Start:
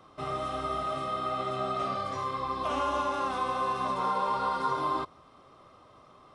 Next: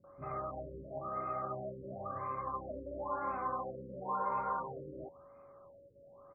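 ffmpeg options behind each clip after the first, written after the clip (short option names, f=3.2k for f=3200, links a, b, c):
-filter_complex "[0:a]aeval=exprs='val(0)+0.00355*sin(2*PI*560*n/s)':c=same,acrossover=split=300|2200[a][b][c];[b]adelay=40[d];[c]adelay=110[e];[a][d][e]amix=inputs=3:normalize=0,afftfilt=real='re*lt(b*sr/1024,550*pow(2600/550,0.5+0.5*sin(2*PI*0.97*pts/sr)))':imag='im*lt(b*sr/1024,550*pow(2600/550,0.5+0.5*sin(2*PI*0.97*pts/sr)))':win_size=1024:overlap=0.75,volume=-5.5dB"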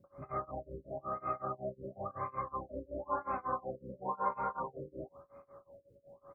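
-af "tremolo=f=5.4:d=0.96,volume=4.5dB"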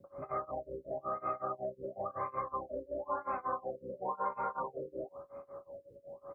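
-filter_complex "[0:a]equalizer=f=530:w=0.64:g=7.5,acrossover=split=360|1300[a][b][c];[a]acompressor=threshold=-52dB:ratio=4[d];[b]acompressor=threshold=-39dB:ratio=4[e];[c]acompressor=threshold=-39dB:ratio=4[f];[d][e][f]amix=inputs=3:normalize=0,volume=1dB"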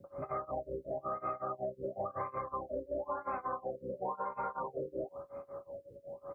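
-af "equalizer=f=91:w=0.63:g=2.5,bandreject=f=1.1k:w=18,alimiter=level_in=6dB:limit=-24dB:level=0:latency=1:release=156,volume=-6dB,volume=2.5dB"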